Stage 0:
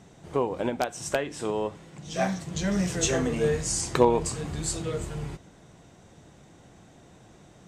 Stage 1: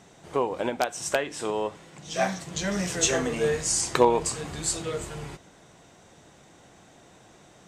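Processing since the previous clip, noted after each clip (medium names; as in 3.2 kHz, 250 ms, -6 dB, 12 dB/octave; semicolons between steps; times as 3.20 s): bass shelf 310 Hz -10 dB; trim +3.5 dB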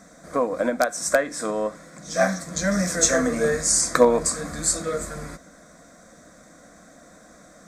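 static phaser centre 580 Hz, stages 8; trim +7.5 dB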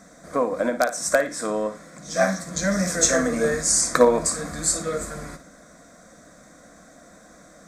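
flutter echo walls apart 9.7 m, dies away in 0.28 s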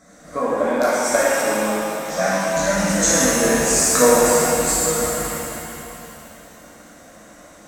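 pitch-shifted reverb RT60 2.8 s, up +7 st, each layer -8 dB, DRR -8.5 dB; trim -4.5 dB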